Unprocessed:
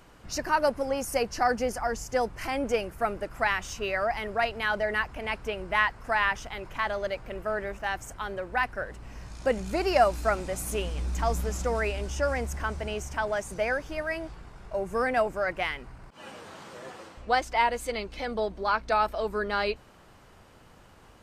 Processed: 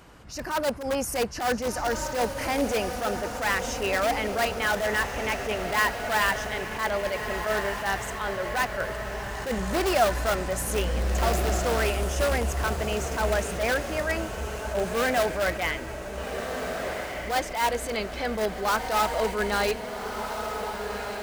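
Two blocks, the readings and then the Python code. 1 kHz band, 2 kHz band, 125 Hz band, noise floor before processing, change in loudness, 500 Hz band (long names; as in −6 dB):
+1.0 dB, +2.0 dB, +5.0 dB, −54 dBFS, +2.0 dB, +2.0 dB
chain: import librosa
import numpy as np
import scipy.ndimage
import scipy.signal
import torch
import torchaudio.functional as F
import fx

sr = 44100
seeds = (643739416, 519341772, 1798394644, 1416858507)

p1 = fx.low_shelf(x, sr, hz=79.0, db=4.0)
p2 = (np.mod(10.0 ** (21.5 / 20.0) * p1 + 1.0, 2.0) - 1.0) / 10.0 ** (21.5 / 20.0)
p3 = p1 + (p2 * librosa.db_to_amplitude(-5.5))
p4 = scipy.signal.sosfilt(scipy.signal.butter(2, 46.0, 'highpass', fs=sr, output='sos'), p3)
p5 = p4 + fx.echo_diffused(p4, sr, ms=1560, feedback_pct=51, wet_db=-7.0, dry=0)
y = fx.attack_slew(p5, sr, db_per_s=110.0)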